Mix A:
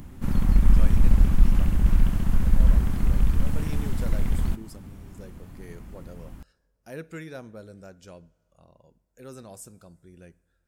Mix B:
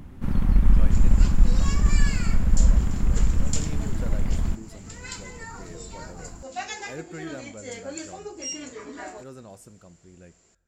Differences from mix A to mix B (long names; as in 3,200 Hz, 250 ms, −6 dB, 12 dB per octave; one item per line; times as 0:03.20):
second sound: unmuted
master: add high-shelf EQ 5,800 Hz −11 dB